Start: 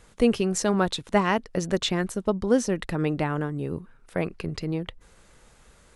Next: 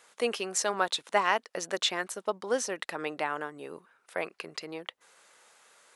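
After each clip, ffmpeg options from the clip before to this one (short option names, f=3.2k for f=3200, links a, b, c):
-af "highpass=650"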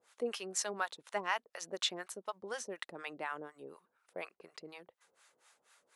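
-filter_complex "[0:a]acrossover=split=670[a][b];[a]aeval=exprs='val(0)*(1-1/2+1/2*cos(2*PI*4.1*n/s))':c=same[c];[b]aeval=exprs='val(0)*(1-1/2-1/2*cos(2*PI*4.1*n/s))':c=same[d];[c][d]amix=inputs=2:normalize=0,volume=-4.5dB"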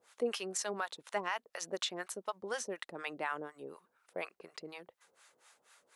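-af "alimiter=level_in=2.5dB:limit=-24dB:level=0:latency=1:release=151,volume=-2.5dB,volume=3dB"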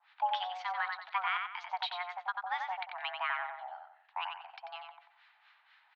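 -filter_complex "[0:a]asplit=2[a][b];[b]adelay=91,lowpass=f=2.8k:p=1,volume=-3.5dB,asplit=2[c][d];[d]adelay=91,lowpass=f=2.8k:p=1,volume=0.38,asplit=2[e][f];[f]adelay=91,lowpass=f=2.8k:p=1,volume=0.38,asplit=2[g][h];[h]adelay=91,lowpass=f=2.8k:p=1,volume=0.38,asplit=2[i][j];[j]adelay=91,lowpass=f=2.8k:p=1,volume=0.38[k];[a][c][e][g][i][k]amix=inputs=6:normalize=0,highpass=f=300:t=q:w=0.5412,highpass=f=300:t=q:w=1.307,lowpass=f=3.5k:t=q:w=0.5176,lowpass=f=3.5k:t=q:w=0.7071,lowpass=f=3.5k:t=q:w=1.932,afreqshift=360,volume=2dB"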